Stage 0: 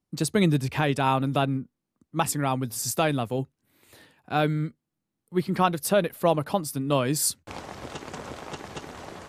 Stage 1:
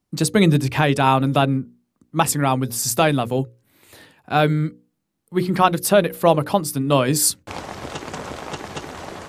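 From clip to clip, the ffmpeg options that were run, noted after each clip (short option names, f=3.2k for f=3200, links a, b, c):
-af "bandreject=f=60:t=h:w=6,bandreject=f=120:t=h:w=6,bandreject=f=180:t=h:w=6,bandreject=f=240:t=h:w=6,bandreject=f=300:t=h:w=6,bandreject=f=360:t=h:w=6,bandreject=f=420:t=h:w=6,bandreject=f=480:t=h:w=6,bandreject=f=540:t=h:w=6,volume=7dB"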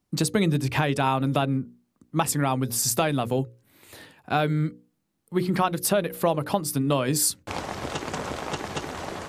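-af "acompressor=threshold=-21dB:ratio=3"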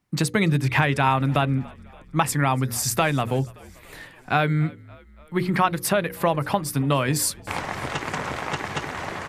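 -filter_complex "[0:a]equalizer=f=125:t=o:w=1:g=6,equalizer=f=1k:t=o:w=1:g=4,equalizer=f=2k:t=o:w=1:g=9,asplit=6[a][b][c][d][e][f];[b]adelay=286,afreqshift=-47,volume=-24dB[g];[c]adelay=572,afreqshift=-94,volume=-27.9dB[h];[d]adelay=858,afreqshift=-141,volume=-31.8dB[i];[e]adelay=1144,afreqshift=-188,volume=-35.6dB[j];[f]adelay=1430,afreqshift=-235,volume=-39.5dB[k];[a][g][h][i][j][k]amix=inputs=6:normalize=0,volume=-1.5dB"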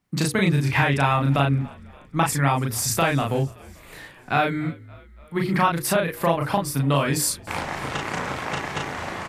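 -filter_complex "[0:a]asplit=2[a][b];[b]adelay=36,volume=-2dB[c];[a][c]amix=inputs=2:normalize=0,volume=-1.5dB"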